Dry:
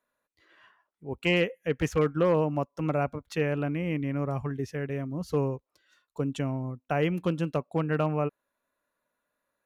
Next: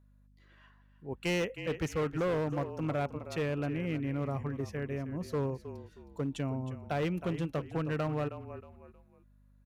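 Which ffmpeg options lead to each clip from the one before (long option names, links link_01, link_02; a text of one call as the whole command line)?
ffmpeg -i in.wav -filter_complex "[0:a]asplit=4[link_01][link_02][link_03][link_04];[link_02]adelay=315,afreqshift=-33,volume=-13dB[link_05];[link_03]adelay=630,afreqshift=-66,volume=-22.6dB[link_06];[link_04]adelay=945,afreqshift=-99,volume=-32.3dB[link_07];[link_01][link_05][link_06][link_07]amix=inputs=4:normalize=0,aeval=exprs='val(0)+0.00141*(sin(2*PI*50*n/s)+sin(2*PI*2*50*n/s)/2+sin(2*PI*3*50*n/s)/3+sin(2*PI*4*50*n/s)/4+sin(2*PI*5*50*n/s)/5)':channel_layout=same,volume=23dB,asoftclip=hard,volume=-23dB,volume=-4dB" out.wav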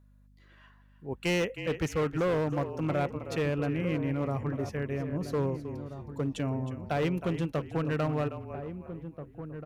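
ffmpeg -i in.wav -filter_complex "[0:a]asplit=2[link_01][link_02];[link_02]adelay=1633,volume=-10dB,highshelf=frequency=4000:gain=-36.7[link_03];[link_01][link_03]amix=inputs=2:normalize=0,volume=3dB" out.wav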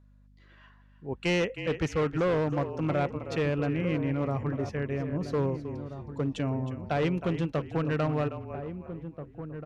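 ffmpeg -i in.wav -af "lowpass=6100,volume=1.5dB" out.wav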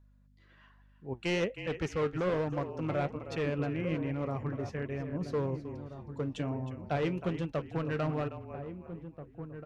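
ffmpeg -i in.wav -af "flanger=delay=1.1:depth=8:regen=68:speed=1.2:shape=sinusoidal" out.wav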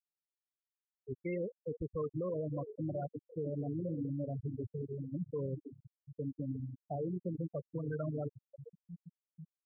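ffmpeg -i in.wav -af "afftfilt=real='re*gte(hypot(re,im),0.0891)':imag='im*gte(hypot(re,im),0.0891)':win_size=1024:overlap=0.75,alimiter=level_in=4.5dB:limit=-24dB:level=0:latency=1:release=86,volume=-4.5dB,volume=-1.5dB" out.wav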